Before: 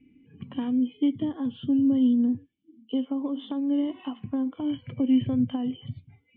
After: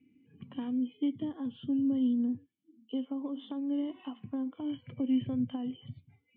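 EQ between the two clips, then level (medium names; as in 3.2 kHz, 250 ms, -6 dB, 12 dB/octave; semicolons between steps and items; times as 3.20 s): high-pass 92 Hz; -7.0 dB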